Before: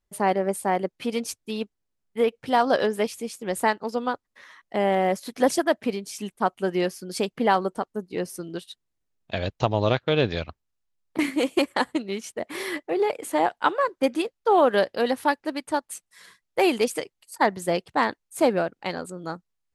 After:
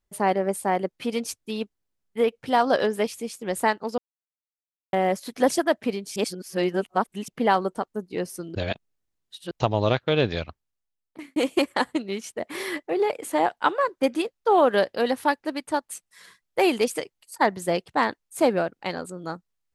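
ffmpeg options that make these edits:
-filter_complex "[0:a]asplit=8[a][b][c][d][e][f][g][h];[a]atrim=end=3.98,asetpts=PTS-STARTPTS,afade=t=out:st=3.976:d=0.004:c=hsin[i];[b]atrim=start=3.98:end=4.93,asetpts=PTS-STARTPTS,volume=0[j];[c]atrim=start=4.93:end=6.162,asetpts=PTS-STARTPTS,afade=t=in:d=0.004:c=hsin[k];[d]atrim=start=6.158:end=7.282,asetpts=PTS-STARTPTS,areverse[l];[e]atrim=start=7.278:end=8.552[m];[f]atrim=start=8.548:end=9.512,asetpts=PTS-STARTPTS,areverse[n];[g]atrim=start=9.508:end=11.36,asetpts=PTS-STARTPTS,afade=t=out:st=0.882:d=0.97[o];[h]atrim=start=11.36,asetpts=PTS-STARTPTS,afade=t=in:d=0.004:c=hsin[p];[i][j][k]concat=n=3:v=0:a=1[q];[q][l]acrossfade=d=0.004:c1=hsin:c2=hsin[r];[r][m]acrossfade=d=0.004:c1=hsin:c2=hsin[s];[s][n]acrossfade=d=0.004:c1=hsin:c2=hsin[t];[o][p]concat=n=2:v=0:a=1[u];[t][u]acrossfade=d=0.004:c1=hsin:c2=hsin"

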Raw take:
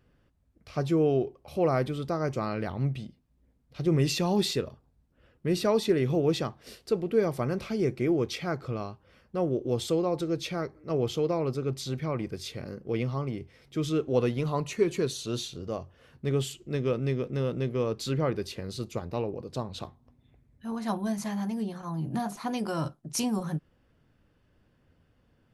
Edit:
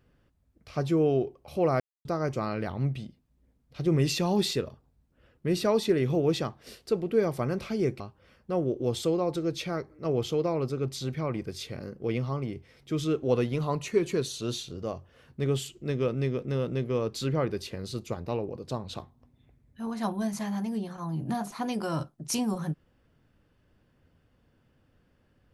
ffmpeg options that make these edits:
-filter_complex "[0:a]asplit=4[a][b][c][d];[a]atrim=end=1.8,asetpts=PTS-STARTPTS,afade=t=out:st=1.796:d=0.004:c=hsin[e];[b]atrim=start=1.8:end=2.05,asetpts=PTS-STARTPTS,volume=0[f];[c]atrim=start=2.05:end=8.002,asetpts=PTS-STARTPTS,afade=t=in:d=0.004:c=hsin[g];[d]atrim=start=8.848[h];[e][f][g]concat=n=3:v=0:a=1[i];[i][h]acrossfade=d=0.004:c1=hsin:c2=hsin"

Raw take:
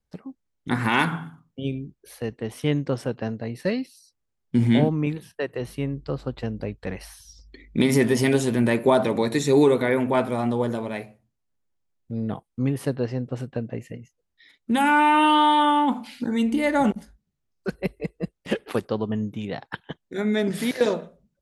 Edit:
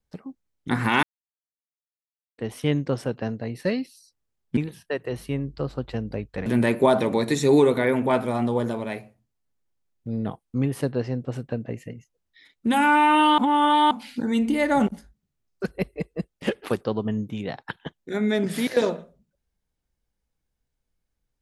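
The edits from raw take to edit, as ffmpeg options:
-filter_complex "[0:a]asplit=7[a][b][c][d][e][f][g];[a]atrim=end=1.03,asetpts=PTS-STARTPTS,afade=t=out:st=1.026:d=0.004:c=hsin[h];[b]atrim=start=1.03:end=2.38,asetpts=PTS-STARTPTS,volume=0[i];[c]atrim=start=2.38:end=4.572,asetpts=PTS-STARTPTS,afade=t=in:d=0.004:c=hsin[j];[d]atrim=start=5.058:end=6.952[k];[e]atrim=start=8.498:end=15.422[l];[f]atrim=start=15.418:end=15.952,asetpts=PTS-STARTPTS,areverse[m];[g]atrim=start=15.948[n];[h][i][j]concat=n=3:v=0:a=1[o];[o][k]acrossfade=d=0.004:c1=hsin:c2=hsin[p];[p][l]acrossfade=d=0.004:c1=hsin:c2=hsin[q];[q][m]acrossfade=d=0.004:c1=hsin:c2=hsin[r];[r][n]acrossfade=d=0.004:c1=hsin:c2=hsin"

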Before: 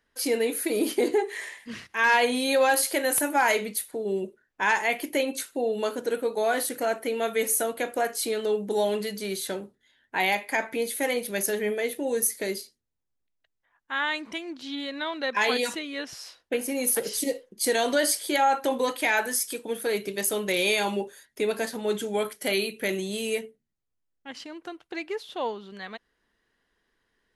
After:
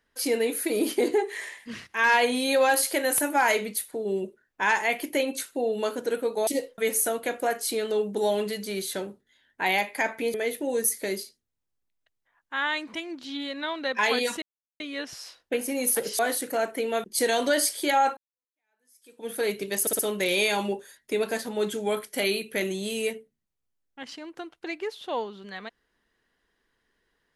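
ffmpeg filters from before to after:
-filter_complex "[0:a]asplit=11[a][b][c][d][e][f][g][h][i][j][k];[a]atrim=end=6.472[l];[b]atrim=start=17.188:end=17.502[m];[c]atrim=start=7.318:end=10.882[n];[d]atrim=start=11.718:end=15.8,asetpts=PTS-STARTPTS,afade=t=out:st=4.078:d=0.004:c=hsin,apad=pad_dur=0.38[o];[e]atrim=start=15.8:end=17.192,asetpts=PTS-STARTPTS,afade=t=in:d=0.004:c=hsin[p];[f]atrim=start=6.468:end=7.322[q];[g]atrim=start=17.498:end=18.63,asetpts=PTS-STARTPTS,afade=t=out:st=1.128:d=0.004:c=hsin[r];[h]atrim=start=18.63:end=20.332,asetpts=PTS-STARTPTS,afade=t=in:d=1.14:c=exp[s];[i]atrim=start=20.268:end=20.332[t];[j]atrim=start=20.268:end=20.332[u];[k]atrim=start=20.268[v];[l][m]acrossfade=d=0.004:c1=hsin:c2=hsin[w];[w][n]acrossfade=d=0.004:c1=hsin:c2=hsin[x];[o][p]concat=n=2:v=0:a=1[y];[x][y]acrossfade=d=0.004:c1=hsin:c2=hsin[z];[z][q]acrossfade=d=0.004:c1=hsin:c2=hsin[aa];[r][s]concat=n=2:v=0:a=1[ab];[aa][ab]acrossfade=d=0.004:c1=hsin:c2=hsin[ac];[ac][t]acrossfade=d=0.004:c1=hsin:c2=hsin[ad];[ad][u]acrossfade=d=0.004:c1=hsin:c2=hsin[ae];[ae][v]acrossfade=d=0.004:c1=hsin:c2=hsin"

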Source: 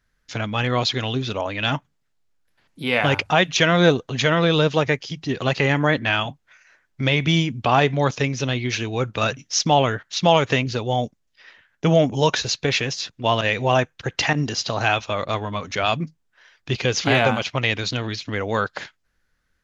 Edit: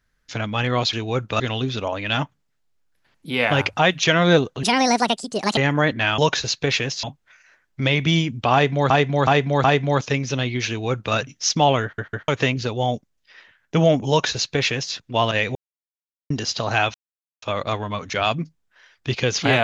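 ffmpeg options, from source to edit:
-filter_complex "[0:a]asplit=16[a][b][c][d][e][f][g][h][i][j][k][l][m][n][o][p];[a]atrim=end=0.932[q];[b]atrim=start=8.778:end=9.252[r];[c]atrim=start=0.928:end=4.164[s];[d]atrim=start=4.16:end=5.63,asetpts=PTS-STARTPTS,asetrate=68796,aresample=44100[t];[e]atrim=start=5.626:end=6.242[u];[f]atrim=start=12.188:end=13.042[v];[g]atrim=start=6.238:end=8.112[w];[h]atrim=start=7.738:end=8.112[x];[i]atrim=start=7.738:end=8.112[y];[j]atrim=start=7.738:end=10.082[z];[k]atrim=start=9.928:end=10.082[aa];[l]atrim=start=9.928:end=10.082[ab];[m]atrim=start=10.378:end=13.65,asetpts=PTS-STARTPTS,afade=t=out:st=3.268:d=0.004:c=hsin[ac];[n]atrim=start=13.65:end=14.4,asetpts=PTS-STARTPTS,volume=0[ad];[o]atrim=start=14.4:end=15.04,asetpts=PTS-STARTPTS,afade=t=in:d=0.004:c=hsin,afade=t=out:st=0.636:d=0.004:c=hsin,apad=pad_dur=0.48[ae];[p]atrim=start=15.04,asetpts=PTS-STARTPTS,afade=t=in:d=0.004:c=hsin[af];[q][r]acrossfade=d=0.004:c1=hsin:c2=hsin[ag];[ag][s]acrossfade=d=0.004:c1=hsin:c2=hsin[ah];[ah][t]acrossfade=d=0.004:c1=hsin:c2=hsin[ai];[ai][u]acrossfade=d=0.004:c1=hsin:c2=hsin[aj];[aj][v]acrossfade=d=0.004:c1=hsin:c2=hsin[ak];[ak][w]acrossfade=d=0.004:c1=hsin:c2=hsin[al];[al][x]acrossfade=d=0.004:c1=hsin:c2=hsin[am];[am][y]acrossfade=d=0.004:c1=hsin:c2=hsin[an];[an][z]acrossfade=d=0.004:c1=hsin:c2=hsin[ao];[ao][aa]acrossfade=d=0.004:c1=hsin:c2=hsin[ap];[ap][ab]acrossfade=d=0.004:c1=hsin:c2=hsin[aq];[ac][ad][ae][af]concat=n=4:v=0:a=1[ar];[aq][ar]acrossfade=d=0.004:c1=hsin:c2=hsin"

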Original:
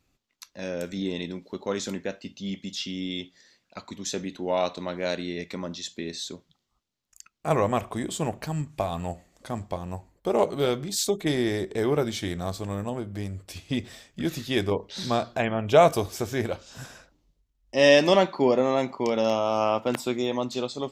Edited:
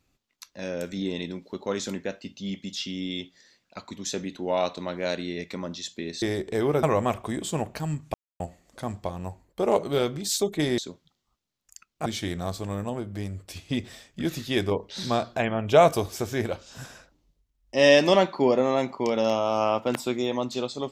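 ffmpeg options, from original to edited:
-filter_complex "[0:a]asplit=7[a][b][c][d][e][f][g];[a]atrim=end=6.222[h];[b]atrim=start=11.448:end=12.062[i];[c]atrim=start=7.498:end=8.81,asetpts=PTS-STARTPTS,afade=t=out:st=1.308:d=0.004:c=hsin[j];[d]atrim=start=8.81:end=9.07,asetpts=PTS-STARTPTS,volume=0[k];[e]atrim=start=9.07:end=11.452,asetpts=PTS-STARTPTS,afade=t=in:d=0.004:c=hsin[l];[f]atrim=start=6.218:end=7.502[m];[g]atrim=start=12.058[n];[h][i]acrossfade=d=0.004:c1=hsin:c2=hsin[o];[j][k][l]concat=n=3:v=0:a=1[p];[o][p]acrossfade=d=0.004:c1=hsin:c2=hsin[q];[q][m]acrossfade=d=0.004:c1=hsin:c2=hsin[r];[r][n]acrossfade=d=0.004:c1=hsin:c2=hsin"

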